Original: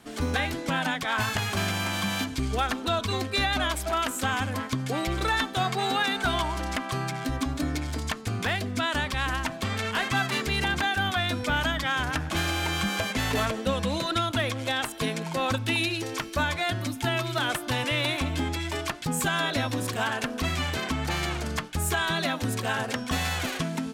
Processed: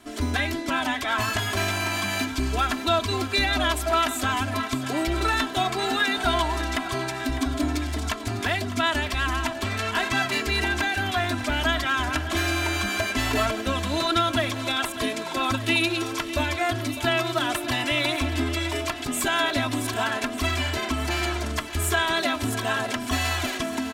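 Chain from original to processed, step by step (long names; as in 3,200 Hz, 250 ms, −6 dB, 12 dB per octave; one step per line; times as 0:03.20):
comb filter 3 ms, depth 82%
feedback echo with a high-pass in the loop 602 ms, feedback 72%, high-pass 190 Hz, level −13.5 dB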